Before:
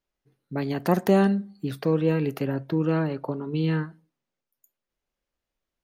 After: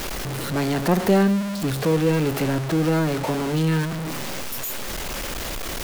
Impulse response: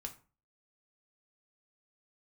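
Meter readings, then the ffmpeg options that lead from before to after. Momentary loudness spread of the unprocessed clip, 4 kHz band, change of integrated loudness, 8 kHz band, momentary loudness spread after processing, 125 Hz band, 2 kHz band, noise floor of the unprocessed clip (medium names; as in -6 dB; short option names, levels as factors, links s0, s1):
11 LU, +12.5 dB, +2.5 dB, no reading, 10 LU, +4.5 dB, +7.5 dB, under -85 dBFS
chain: -af "aeval=exprs='val(0)+0.5*0.0794*sgn(val(0))':c=same"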